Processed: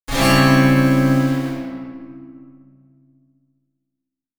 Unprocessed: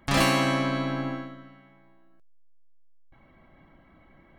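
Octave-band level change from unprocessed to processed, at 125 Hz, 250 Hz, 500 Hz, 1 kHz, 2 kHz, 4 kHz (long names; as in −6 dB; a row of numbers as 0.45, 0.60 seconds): +14.0, +13.0, +9.0, +7.0, +9.0, +6.5 decibels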